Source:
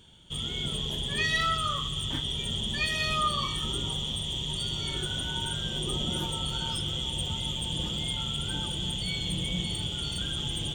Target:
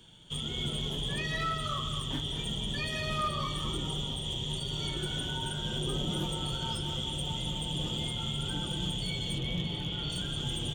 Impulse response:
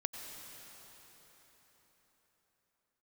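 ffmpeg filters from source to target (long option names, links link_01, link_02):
-filter_complex "[0:a]flanger=delay=5.9:depth=2.7:regen=-41:speed=0.8:shape=triangular,asettb=1/sr,asplit=3[link_01][link_02][link_03];[link_01]atrim=end=9.384[link_04];[link_02]atrim=start=9.38:end=10.1,asetpts=PTS-STARTPTS,afade=type=in:duration=0.004:curve=qsin,afade=type=out:start_time=0.716:duration=0.004:curve=qsin,lowpass=3200[link_05];[link_03]atrim=start=10.096[link_06];[link_04][link_05]acrossfade=duration=0.004:curve1=hsin:curve2=qsin[link_07];[link_07][link_06]acrossfade=duration=0.004:curve1=qsin:curve2=hsin,acrossover=split=150|1000[link_08][link_09][link_10];[link_10]alimiter=level_in=8dB:limit=-24dB:level=0:latency=1:release=463,volume=-8dB[link_11];[link_08][link_09][link_11]amix=inputs=3:normalize=0,volume=29.5dB,asoftclip=hard,volume=-29.5dB,bandreject=frequency=50:width_type=h:width=6,bandreject=frequency=100:width_type=h:width=6,asplit=2[link_12][link_13];[link_13]adelay=220,highpass=300,lowpass=3400,asoftclip=type=hard:threshold=-38dB,volume=-6dB[link_14];[link_12][link_14]amix=inputs=2:normalize=0,volume=4dB"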